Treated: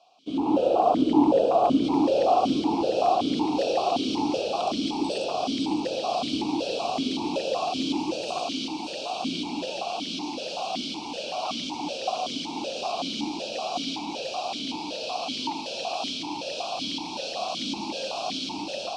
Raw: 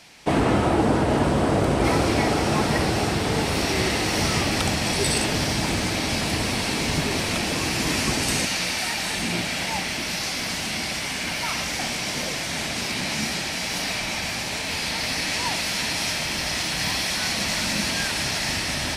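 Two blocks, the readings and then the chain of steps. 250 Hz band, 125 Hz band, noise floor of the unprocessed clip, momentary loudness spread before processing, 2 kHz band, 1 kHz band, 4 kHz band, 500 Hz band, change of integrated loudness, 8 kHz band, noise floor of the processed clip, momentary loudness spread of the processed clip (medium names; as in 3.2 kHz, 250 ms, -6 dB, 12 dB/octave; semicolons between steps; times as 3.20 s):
-0.5 dB, -16.5 dB, -29 dBFS, 5 LU, -14.5 dB, +1.0 dB, -6.0 dB, +1.0 dB, -4.0 dB, -14.5 dB, -35 dBFS, 10 LU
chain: octave divider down 2 oct, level -4 dB; tilt EQ +3 dB/octave; wavefolder -6.5 dBFS; level rider; Butterworth band-stop 1.9 kHz, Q 0.73; distance through air 110 m; echo whose repeats swap between lows and highs 280 ms, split 1.1 kHz, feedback 82%, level -5 dB; crackling interface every 0.14 s, samples 256, repeat, from 0.81 s; loudness maximiser +5 dB; stepped vowel filter 5.3 Hz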